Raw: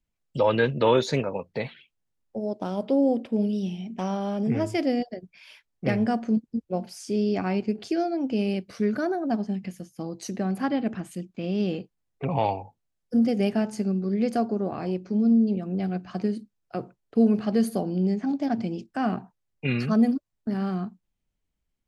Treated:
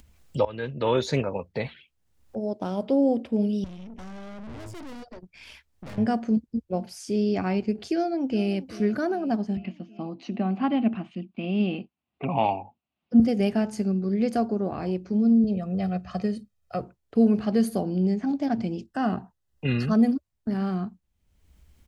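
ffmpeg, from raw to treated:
-filter_complex "[0:a]asettb=1/sr,asplit=3[a][b][c];[a]atrim=end=3.644[d];[b]atrim=start=3.64:end=5.98,asetpts=PTS-STARTPTS,afade=t=in:d=0.004:c=qsin,afade=t=out:st=2.336:d=0.004:c=qsin,aeval=exprs='(tanh(100*val(0)+0.65)-tanh(0.65))/100':c=same[e];[c]atrim=start=5.976[f];[d][e]acrossfade=d=0.004:c1=hsin:c2=qsin[g];[g][f]acrossfade=d=0.004:c1=qsin:c2=hsin,asplit=2[h][i];[i]afade=t=in:st=7.92:d=0.01,afade=t=out:st=8.53:d=0.01,aecho=0:1:390|780|1170|1560|1950|2340:0.149624|0.0897741|0.0538645|0.0323187|0.0193912|0.0116347[j];[h][j]amix=inputs=2:normalize=0,asettb=1/sr,asplit=3[k][l][m];[k]atrim=end=9.574[n];[l]atrim=start=9.57:end=13.2,asetpts=PTS-STARTPTS,afade=t=in:d=0.004:c=qsin,afade=t=out:st=3.626:d=0.004:c=qsin,highpass=170,equalizer=f=230:t=q:w=4:g=7,equalizer=f=480:t=q:w=4:g=-8,equalizer=f=720:t=q:w=4:g=4,equalizer=f=1.1k:t=q:w=4:g=3,equalizer=f=1.7k:t=q:w=4:g=-7,equalizer=f=2.7k:t=q:w=4:g=7,lowpass=f=3.6k:w=0.5412,lowpass=f=3.6k:w=1.3066[o];[m]atrim=start=13.196[p];[n][o]acrossfade=d=0.004:c1=hsin:c2=qsin[q];[q][p]acrossfade=d=0.004:c1=qsin:c2=hsin,asettb=1/sr,asplit=3[r][s][t];[r]atrim=end=15.444[u];[s]atrim=start=15.44:end=16.81,asetpts=PTS-STARTPTS,afade=t=in:d=0.004:c=qsin,afade=t=out:st=1.366:d=0.004:c=qsin,aecho=1:1:1.6:0.65,atrim=end_sample=60417[v];[t]atrim=start=16.806[w];[u][v]acrossfade=d=0.004:c1=hsin:c2=qsin[x];[x][w]acrossfade=d=0.004:c1=qsin:c2=hsin,asettb=1/sr,asplit=3[y][z][aa];[y]atrim=end=18.834[ab];[z]atrim=start=18.83:end=19.95,asetpts=PTS-STARTPTS,afade=t=in:d=0.004:c=qsin,afade=t=out:st=1.116:d=0.004:c=qsin,asuperstop=centerf=2300:order=8:qfactor=6.7[ac];[aa]atrim=start=19.946[ad];[ab][ac]acrossfade=d=0.004:c1=hsin:c2=qsin[ae];[ae][ad]acrossfade=d=0.004:c1=qsin:c2=hsin,asplit=2[af][ag];[af]atrim=end=0.45,asetpts=PTS-STARTPTS,afade=t=out:st=0.446:d=0.004:c=hsin:silence=0.0891251[ah];[ag]atrim=start=0.45,asetpts=PTS-STARTPTS,afade=t=in:d=0.73:silence=0.0891251[ai];[ah][ai]concat=n=2:v=0:a=1,equalizer=f=70:t=o:w=0.62:g=14.5,acompressor=mode=upward:threshold=-38dB:ratio=2.5"

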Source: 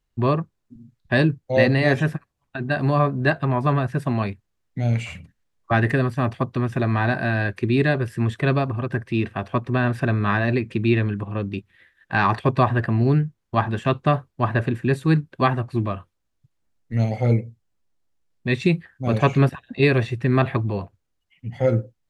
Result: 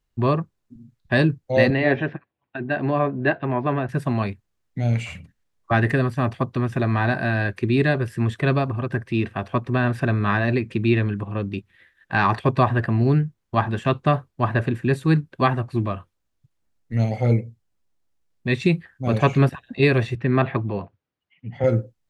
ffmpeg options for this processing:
-filter_complex "[0:a]asettb=1/sr,asplit=3[a][b][c];[a]atrim=end=1.704[d];[b]atrim=start=1.7:end=3.89,asetpts=PTS-STARTPTS,afade=t=in:d=0.004:c=qsin,afade=t=out:st=2.186:d=0.004:c=qsin,highpass=130,equalizer=f=160:t=q:w=4:g=-7,equalizer=f=340:t=q:w=4:g=3,equalizer=f=1.2k:t=q:w=4:g=-5,lowpass=f=3.2k:w=0.5412,lowpass=f=3.2k:w=1.3066[e];[c]atrim=start=3.886[f];[d][e]acrossfade=d=0.004:c1=hsin:c2=qsin[g];[g][f]acrossfade=d=0.004:c1=qsin:c2=hsin,asettb=1/sr,asplit=3[h][i][j];[h]atrim=end=20.154[k];[i]atrim=start=20.15:end=21.64,asetpts=PTS-STARTPTS,afade=t=in:d=0.004:c=qsin,afade=t=out:st=1.486:d=0.004:c=qsin,highpass=110,lowpass=3.4k[l];[j]atrim=start=21.636[m];[k][l]acrossfade=d=0.004:c1=hsin:c2=qsin[n];[n][m]acrossfade=d=0.004:c1=qsin:c2=hsin"

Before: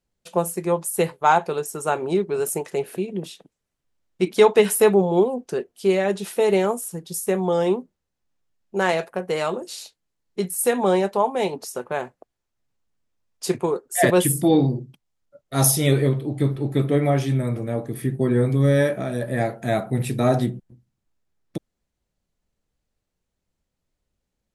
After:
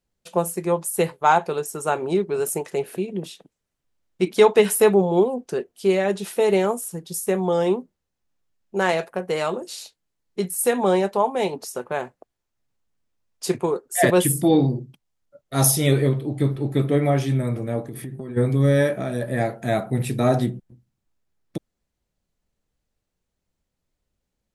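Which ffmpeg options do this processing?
-filter_complex "[0:a]asplit=3[a][b][c];[a]afade=t=out:st=17.82:d=0.02[d];[b]acompressor=threshold=-29dB:ratio=10:attack=3.2:release=140:knee=1:detection=peak,afade=t=in:st=17.82:d=0.02,afade=t=out:st=18.36:d=0.02[e];[c]afade=t=in:st=18.36:d=0.02[f];[d][e][f]amix=inputs=3:normalize=0"

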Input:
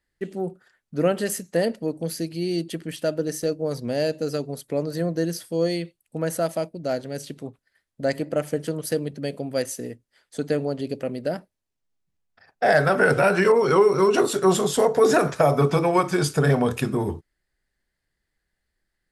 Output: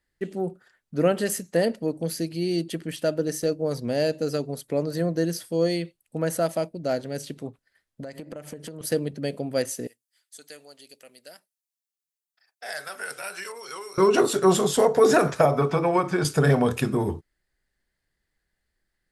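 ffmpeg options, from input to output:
-filter_complex "[0:a]asettb=1/sr,asplit=3[a][b][c];[a]atrim=end=8.024[d];[b]atrim=start=8.02:end=8.81,asetpts=PTS-STARTPTS,afade=t=in:d=0.004:c=qsin,afade=t=out:st=0.786:d=0.004:c=qsin,acompressor=threshold=-33dB:ratio=20:attack=3.2:release=140:knee=1:detection=peak[e];[c]atrim=start=8.806[f];[d][e]acrossfade=d=0.004:c1=hsin:c2=qsin[g];[g][f]acrossfade=d=0.004:c1=qsin:c2=hsin,asettb=1/sr,asplit=3[h][i][j];[h]atrim=end=9.874[k];[i]atrim=start=9.87:end=13.98,asetpts=PTS-STARTPTS,afade=t=in:d=0.004:c=qsin,afade=t=out:st=4.106:d=0.004:c=qsin,aderivative[l];[j]atrim=start=13.976[m];[k][l]acrossfade=d=0.004:c1=hsin:c2=qsin[n];[n][m]acrossfade=d=0.004:c1=qsin:c2=hsin,asettb=1/sr,asplit=3[o][p][q];[o]atrim=end=15.454[r];[p]atrim=start=15.45:end=16.25,asetpts=PTS-STARTPTS,afade=t=in:d=0.004:c=qsin,afade=t=out:st=0.796:d=0.004:c=qsin,acrossover=split=510|2400|5700[s][t][u][v];[s]acompressor=threshold=-23dB:ratio=3[w];[t]acompressor=threshold=-21dB:ratio=3[x];[u]acompressor=threshold=-49dB:ratio=3[y];[v]acompressor=threshold=-59dB:ratio=3[z];[w][x][y][z]amix=inputs=4:normalize=0[aa];[q]atrim=start=16.246[ab];[r][aa]acrossfade=d=0.004:c1=hsin:c2=qsin[ac];[ac][ab]acrossfade=d=0.004:c1=qsin:c2=hsin"

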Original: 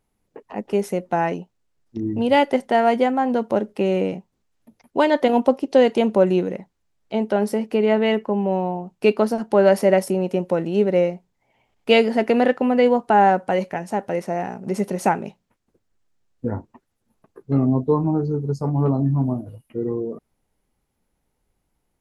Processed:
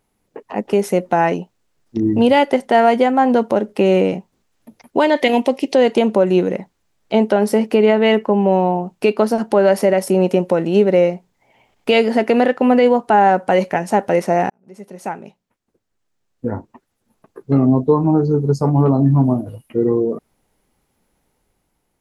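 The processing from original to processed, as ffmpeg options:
-filter_complex "[0:a]asplit=3[a][b][c];[a]afade=t=out:st=5.15:d=0.02[d];[b]highshelf=f=1.7k:t=q:w=3:g=6,afade=t=in:st=5.15:d=0.02,afade=t=out:st=5.72:d=0.02[e];[c]afade=t=in:st=5.72:d=0.02[f];[d][e][f]amix=inputs=3:normalize=0,asplit=2[g][h];[g]atrim=end=14.5,asetpts=PTS-STARTPTS,afade=t=out:st=14.496:d=0.004:c=hsin[i];[h]atrim=start=14.5,asetpts=PTS-STARTPTS,afade=t=in:d=3.72[j];[i][j]concat=n=2:v=0:a=1,lowshelf=f=120:g=-6.5,alimiter=limit=-13.5dB:level=0:latency=1:release=304,dynaudnorm=f=130:g=11:m=3dB,volume=6.5dB"

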